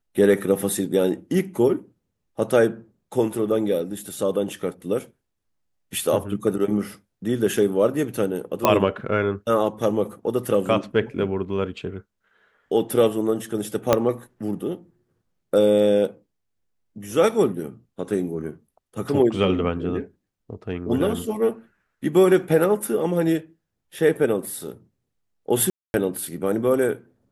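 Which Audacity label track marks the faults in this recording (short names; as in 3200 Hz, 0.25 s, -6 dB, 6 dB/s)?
8.650000	8.650000	pop -3 dBFS
13.930000	13.930000	pop -2 dBFS
25.700000	25.940000	gap 0.241 s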